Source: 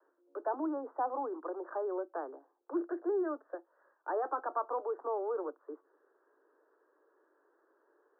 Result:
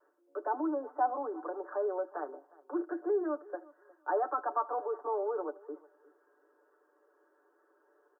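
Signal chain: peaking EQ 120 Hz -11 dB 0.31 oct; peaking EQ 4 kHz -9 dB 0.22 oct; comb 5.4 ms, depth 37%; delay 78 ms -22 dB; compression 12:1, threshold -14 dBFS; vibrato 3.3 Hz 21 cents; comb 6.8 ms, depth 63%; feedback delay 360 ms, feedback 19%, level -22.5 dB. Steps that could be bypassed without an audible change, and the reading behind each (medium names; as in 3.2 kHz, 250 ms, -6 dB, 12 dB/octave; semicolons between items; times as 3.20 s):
peaking EQ 120 Hz: input has nothing below 240 Hz; peaking EQ 4 kHz: input has nothing above 1.7 kHz; compression, threshold -14 dBFS: peak at its input -21.5 dBFS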